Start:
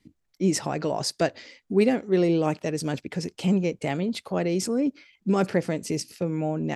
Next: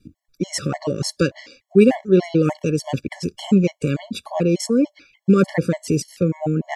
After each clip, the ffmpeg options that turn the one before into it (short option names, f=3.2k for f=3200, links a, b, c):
-af "lowshelf=f=160:g=8,afftfilt=real='re*gt(sin(2*PI*3.4*pts/sr)*(1-2*mod(floor(b*sr/1024/570),2)),0)':imag='im*gt(sin(2*PI*3.4*pts/sr)*(1-2*mod(floor(b*sr/1024/570),2)),0)':win_size=1024:overlap=0.75,volume=6.5dB"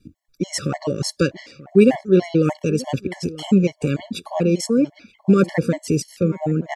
-filter_complex "[0:a]asplit=2[a][b];[b]adelay=932.9,volume=-18dB,highshelf=f=4k:g=-21[c];[a][c]amix=inputs=2:normalize=0"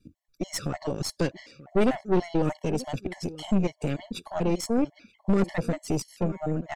-af "aeval=exprs='(tanh(5.62*val(0)+0.75)-tanh(0.75))/5.62':c=same,volume=-2.5dB"